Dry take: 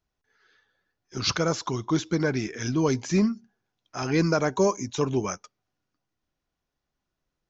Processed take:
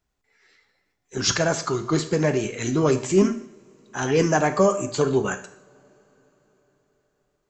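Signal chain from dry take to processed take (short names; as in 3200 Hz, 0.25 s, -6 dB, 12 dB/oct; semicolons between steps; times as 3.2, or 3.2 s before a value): formant shift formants +3 st; two-slope reverb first 0.57 s, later 4.8 s, from -28 dB, DRR 8 dB; gain +3.5 dB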